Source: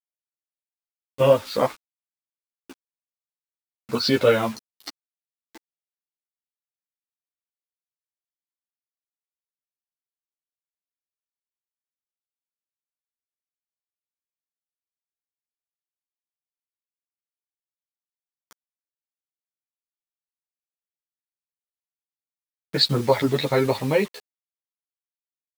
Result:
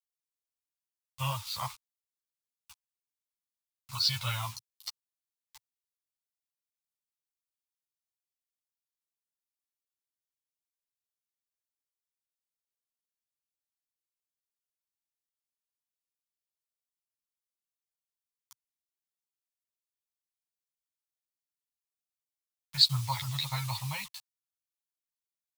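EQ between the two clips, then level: Chebyshev band-stop 120–1000 Hz, order 3; low shelf 120 Hz -4 dB; bell 1600 Hz -15 dB 1.1 oct; 0.0 dB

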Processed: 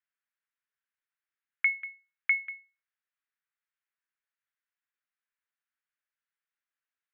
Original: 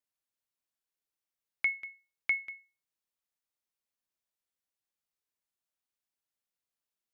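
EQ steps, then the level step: resonant high-pass 1600 Hz, resonance Q 2.4; air absorption 470 m; +4.0 dB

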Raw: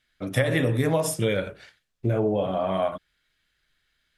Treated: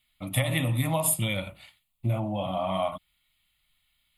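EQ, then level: high shelf 8500 Hz +11.5 dB; bell 11000 Hz +3.5 dB 3 oct; fixed phaser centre 1600 Hz, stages 6; 0.0 dB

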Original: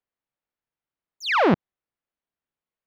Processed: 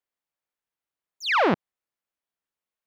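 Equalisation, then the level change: low shelf 330 Hz -7.5 dB; 0.0 dB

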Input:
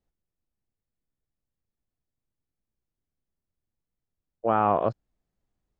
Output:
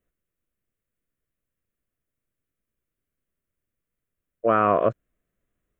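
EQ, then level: bell 750 Hz +14 dB 2 oct; high shelf 2400 Hz +7 dB; fixed phaser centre 2000 Hz, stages 4; 0.0 dB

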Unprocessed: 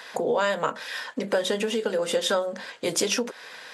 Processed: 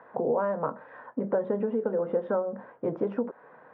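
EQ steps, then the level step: LPF 1200 Hz 24 dB/oct; low shelf 120 Hz +6.5 dB; low shelf 390 Hz +3 dB; -3.5 dB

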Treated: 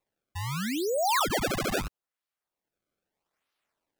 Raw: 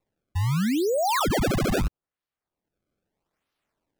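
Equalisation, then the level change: low shelf 380 Hz -11.5 dB; 0.0 dB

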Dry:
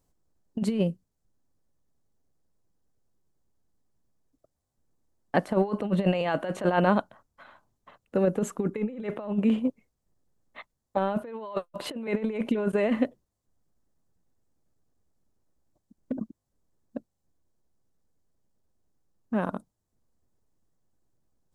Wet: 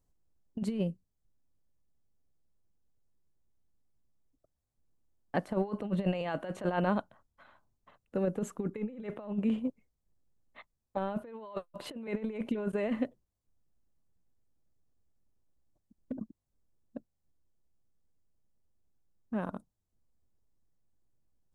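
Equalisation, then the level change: low shelf 110 Hz +8 dB; -8.0 dB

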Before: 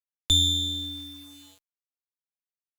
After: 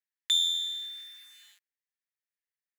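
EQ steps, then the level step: resonant high-pass 1800 Hz, resonance Q 5.8; -6.0 dB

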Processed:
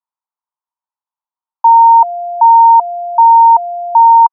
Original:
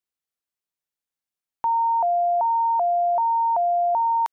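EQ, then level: resonant high-pass 940 Hz, resonance Q 8.6; LPF 1300 Hz 24 dB/oct; -1.5 dB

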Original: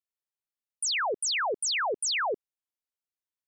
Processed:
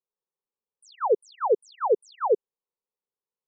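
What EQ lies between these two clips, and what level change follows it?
polynomial smoothing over 65 samples; bell 490 Hz +11 dB 1.8 oct; fixed phaser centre 440 Hz, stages 8; +1.5 dB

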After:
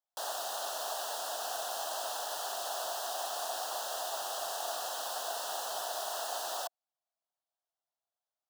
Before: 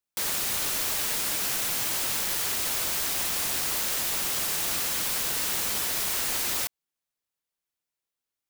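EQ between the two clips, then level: resonant high-pass 690 Hz, resonance Q 5.6; Butterworth band-stop 2200 Hz, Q 1.7; high shelf 7700 Hz -11 dB; -6.0 dB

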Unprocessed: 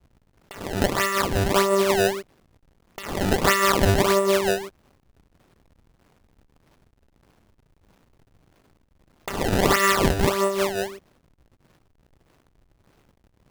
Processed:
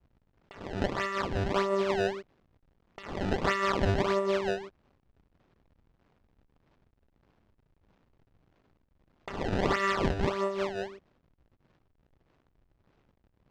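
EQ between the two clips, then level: air absorption 150 m; -7.5 dB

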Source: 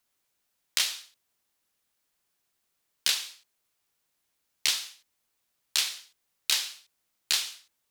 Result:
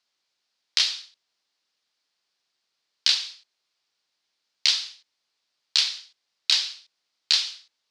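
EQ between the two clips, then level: HPF 350 Hz 6 dB/oct; synth low-pass 4700 Hz, resonance Q 2.6; 0.0 dB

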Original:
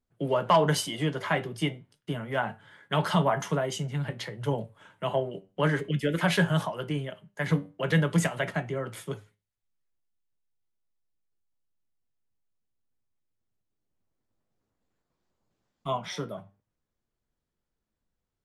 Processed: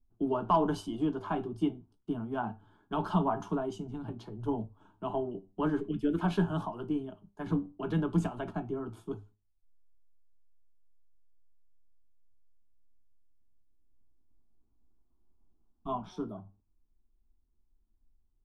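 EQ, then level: tilt -4.5 dB/oct; dynamic EQ 2100 Hz, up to +5 dB, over -40 dBFS, Q 0.98; fixed phaser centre 530 Hz, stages 6; -5.0 dB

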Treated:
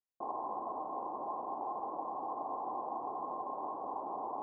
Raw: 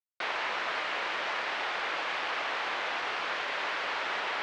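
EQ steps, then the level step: rippled Chebyshev low-pass 1100 Hz, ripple 9 dB; +3.5 dB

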